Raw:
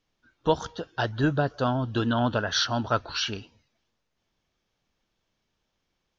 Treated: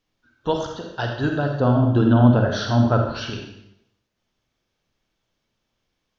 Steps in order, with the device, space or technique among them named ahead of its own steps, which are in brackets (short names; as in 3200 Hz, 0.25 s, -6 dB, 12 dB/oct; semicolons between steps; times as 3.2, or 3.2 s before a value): 1.58–3.3 tilt shelf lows +8.5 dB, about 1200 Hz; bathroom (reverb RT60 0.80 s, pre-delay 38 ms, DRR 2.5 dB)